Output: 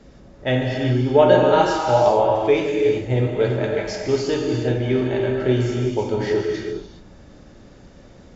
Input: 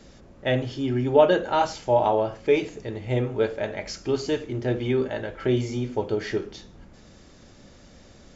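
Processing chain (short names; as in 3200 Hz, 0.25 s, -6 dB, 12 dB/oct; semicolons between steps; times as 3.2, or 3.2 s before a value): non-linear reverb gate 0.43 s flat, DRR -0.5 dB; mismatched tape noise reduction decoder only; gain +2 dB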